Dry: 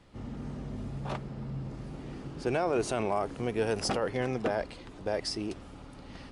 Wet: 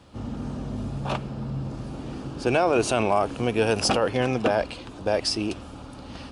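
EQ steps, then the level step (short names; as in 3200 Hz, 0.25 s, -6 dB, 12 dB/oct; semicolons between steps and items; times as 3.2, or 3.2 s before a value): HPF 49 Hz; dynamic EQ 2600 Hz, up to +6 dB, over -56 dBFS, Q 2.1; thirty-one-band EQ 160 Hz -6 dB, 400 Hz -4 dB, 2000 Hz -9 dB; +8.5 dB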